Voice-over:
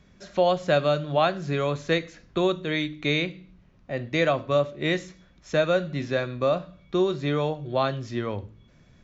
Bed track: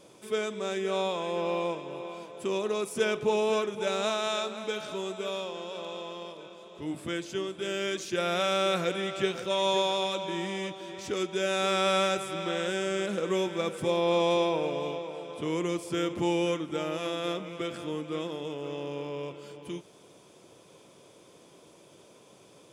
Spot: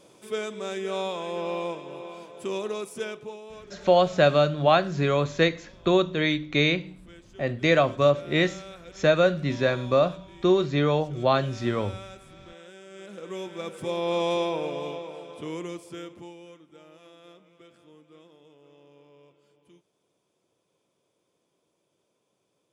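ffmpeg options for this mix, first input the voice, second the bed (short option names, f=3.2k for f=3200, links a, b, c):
-filter_complex "[0:a]adelay=3500,volume=2.5dB[a];[1:a]volume=16dB,afade=t=out:st=2.62:d=0.77:silence=0.149624,afade=t=in:st=12.89:d=1.33:silence=0.149624,afade=t=out:st=15.05:d=1.3:silence=0.112202[b];[a][b]amix=inputs=2:normalize=0"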